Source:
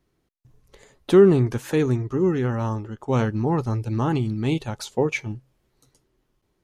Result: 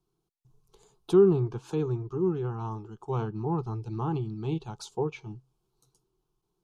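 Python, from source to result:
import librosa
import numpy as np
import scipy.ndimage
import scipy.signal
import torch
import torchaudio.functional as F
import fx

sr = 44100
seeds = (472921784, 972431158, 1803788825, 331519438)

y = fx.env_lowpass_down(x, sr, base_hz=3000.0, full_db=-19.5)
y = fx.fixed_phaser(y, sr, hz=380.0, stages=8)
y = F.gain(torch.from_numpy(y), -5.5).numpy()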